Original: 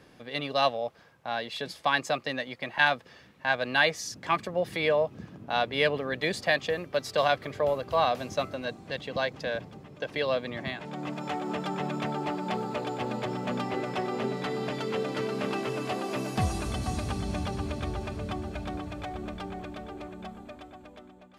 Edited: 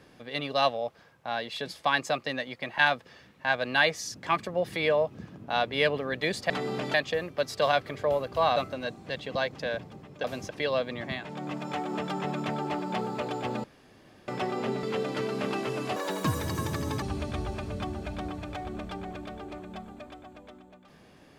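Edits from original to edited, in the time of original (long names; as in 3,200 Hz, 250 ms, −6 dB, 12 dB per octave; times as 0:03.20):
0:08.12–0:08.37: move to 0:10.05
0:13.20–0:13.84: fill with room tone
0:14.39–0:14.83: move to 0:06.50
0:15.96–0:17.51: play speed 146%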